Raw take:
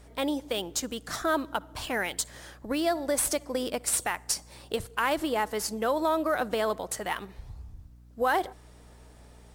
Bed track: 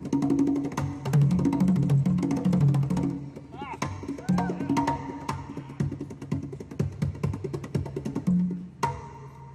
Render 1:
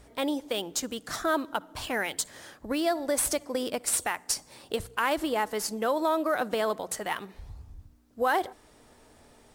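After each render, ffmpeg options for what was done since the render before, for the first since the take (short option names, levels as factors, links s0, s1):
-af "bandreject=f=60:t=h:w=4,bandreject=f=120:t=h:w=4,bandreject=f=180:t=h:w=4"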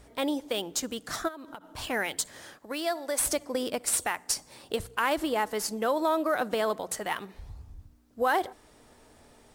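-filter_complex "[0:a]asplit=3[s0][s1][s2];[s0]afade=t=out:st=1.27:d=0.02[s3];[s1]acompressor=threshold=0.0126:ratio=16:attack=3.2:release=140:knee=1:detection=peak,afade=t=in:st=1.27:d=0.02,afade=t=out:st=1.77:d=0.02[s4];[s2]afade=t=in:st=1.77:d=0.02[s5];[s3][s4][s5]amix=inputs=3:normalize=0,asettb=1/sr,asplit=3[s6][s7][s8];[s6]atrim=end=2.584[s9];[s7]atrim=start=2.58:end=3.2,asetpts=PTS-STARTPTS,afade=t=in:d=0.004:c=qsin,afade=t=out:st=0.616:d=0.004:c=qsin,highpass=f=660:p=1[s10];[s8]atrim=start=3.196[s11];[s9][s10]acrossfade=d=0.004:c1=hsin:c2=qsin[s12];[s12][s11]acrossfade=d=0.004:c1=qsin:c2=hsin"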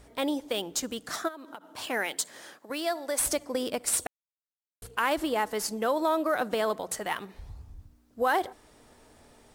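-filter_complex "[0:a]asettb=1/sr,asplit=3[s0][s1][s2];[s0]atrim=end=1.094[s3];[s1]atrim=start=1.09:end=2.7,asetpts=PTS-STARTPTS,afade=t=in:d=0.004:c=qsin,afade=t=out:st=1.606:d=0.004:c=qsin,highpass=220[s4];[s2]atrim=start=2.696[s5];[s3][s4]acrossfade=d=0.004:c1=hsin:c2=qsin[s6];[s6][s5]acrossfade=d=0.004:c1=qsin:c2=hsin,asplit=3[s7][s8][s9];[s7]atrim=end=4.07,asetpts=PTS-STARTPTS,afade=t=out:st=4.066:d=0.004:c=hsin[s10];[s8]atrim=start=4.07:end=4.82,asetpts=PTS-STARTPTS,volume=0[s11];[s9]atrim=start=4.82,asetpts=PTS-STARTPTS,afade=t=in:d=0.004:c=hsin[s12];[s10][s11][s12]concat=n=3:v=0:a=1"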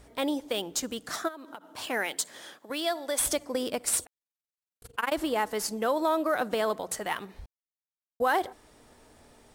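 -filter_complex "[0:a]asettb=1/sr,asplit=3[s0][s1][s2];[s0]atrim=end=2.344[s3];[s1]atrim=start=2.34:end=3.36,asetpts=PTS-STARTPTS,afade=t=in:d=0.004:c=qsin,afade=t=out:st=1.016:d=0.004:c=qsin,equalizer=f=3400:w=8:g=9[s4];[s2]atrim=start=3.356[s5];[s3][s4]acrossfade=d=0.004:c1=hsin:c2=qsin[s6];[s6][s5]acrossfade=d=0.004:c1=qsin:c2=hsin,asettb=1/sr,asplit=3[s7][s8][s9];[s7]atrim=end=4.044[s10];[s8]atrim=start=4.04:end=5.12,asetpts=PTS-STARTPTS,afade=t=in:d=0.004:c=qsin,afade=t=out:st=1.076:d=0.004:c=qsin,tremolo=f=22:d=0.947[s11];[s9]atrim=start=5.116[s12];[s10][s11]acrossfade=d=0.004:c1=hsin:c2=qsin[s13];[s13][s12]acrossfade=d=0.004:c1=qsin:c2=hsin,asplit=3[s14][s15][s16];[s14]atrim=end=7.46,asetpts=PTS-STARTPTS,afade=t=out:st=7.456:d=0.004:c=hsin[s17];[s15]atrim=start=7.46:end=8.2,asetpts=PTS-STARTPTS,volume=0[s18];[s16]atrim=start=8.2,asetpts=PTS-STARTPTS,afade=t=in:d=0.004:c=hsin[s19];[s17][s18][s19]concat=n=3:v=0:a=1"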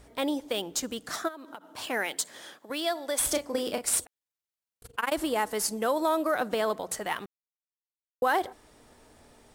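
-filter_complex "[0:a]asettb=1/sr,asplit=3[s0][s1][s2];[s0]atrim=end=3.254[s3];[s1]atrim=start=3.25:end=4,asetpts=PTS-STARTPTS,afade=t=in:d=0.004:c=qsin,afade=t=out:st=0.746:d=0.004:c=qsin,asplit=2[s4][s5];[s5]adelay=34,volume=0.422[s6];[s4][s6]amix=inputs=2:normalize=0,atrim=end_sample=33075[s7];[s2]atrim=start=3.996[s8];[s3][s7]acrossfade=d=0.004:c1=hsin:c2=qsin[s9];[s9][s8]acrossfade=d=0.004:c1=qsin:c2=hsin,asettb=1/sr,asplit=3[s10][s11][s12];[s10]atrim=end=5.054[s13];[s11]atrim=start=5.05:end=6.31,asetpts=PTS-STARTPTS,afade=t=in:d=0.004:c=qsin,afade=t=out:st=1.256:d=0.004:c=qsin,equalizer=f=9900:w=0.92:g=5.5[s14];[s12]atrim=start=6.306[s15];[s13][s14]acrossfade=d=0.004:c1=hsin:c2=qsin[s16];[s16][s15]acrossfade=d=0.004:c1=qsin:c2=hsin,asplit=3[s17][s18][s19];[s17]atrim=end=7.26,asetpts=PTS-STARTPTS,afade=t=out:st=7.256:d=0.004:c=hsin[s20];[s18]atrim=start=7.26:end=8.22,asetpts=PTS-STARTPTS,volume=0[s21];[s19]atrim=start=8.22,asetpts=PTS-STARTPTS,afade=t=in:d=0.004:c=hsin[s22];[s20][s21][s22]concat=n=3:v=0:a=1"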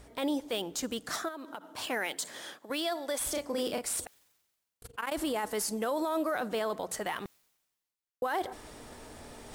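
-af "alimiter=limit=0.0668:level=0:latency=1:release=12,areverse,acompressor=mode=upward:threshold=0.0126:ratio=2.5,areverse"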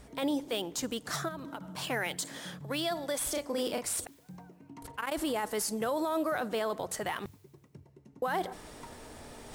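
-filter_complex "[1:a]volume=0.0631[s0];[0:a][s0]amix=inputs=2:normalize=0"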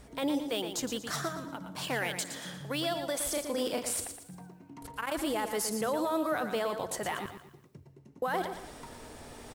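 -af "aecho=1:1:116|232|348|464:0.376|0.135|0.0487|0.0175"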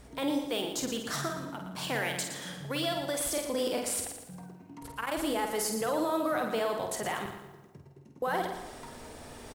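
-filter_complex "[0:a]asplit=2[s0][s1];[s1]adelay=49,volume=0.501[s2];[s0][s2]amix=inputs=2:normalize=0,asplit=2[s3][s4];[s4]adelay=209,lowpass=f=1500:p=1,volume=0.158,asplit=2[s5][s6];[s6]adelay=209,lowpass=f=1500:p=1,volume=0.45,asplit=2[s7][s8];[s8]adelay=209,lowpass=f=1500:p=1,volume=0.45,asplit=2[s9][s10];[s10]adelay=209,lowpass=f=1500:p=1,volume=0.45[s11];[s3][s5][s7][s9][s11]amix=inputs=5:normalize=0"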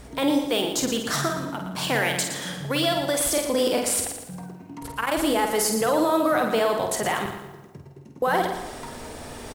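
-af "volume=2.66"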